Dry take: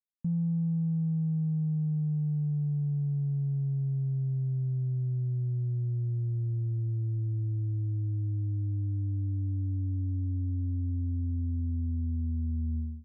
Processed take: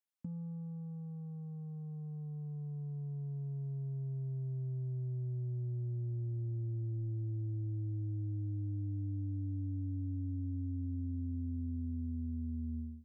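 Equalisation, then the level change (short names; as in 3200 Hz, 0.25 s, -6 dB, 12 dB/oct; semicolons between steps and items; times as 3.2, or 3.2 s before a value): HPF 120 Hz; bell 160 Hz -13 dB 0.44 oct; -1.0 dB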